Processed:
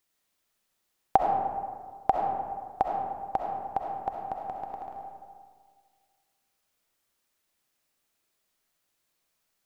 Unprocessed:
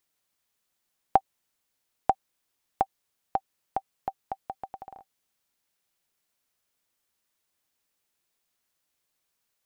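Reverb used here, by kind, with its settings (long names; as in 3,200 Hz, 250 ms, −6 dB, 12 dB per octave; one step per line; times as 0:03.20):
comb and all-pass reverb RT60 1.8 s, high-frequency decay 0.45×, pre-delay 25 ms, DRR 0 dB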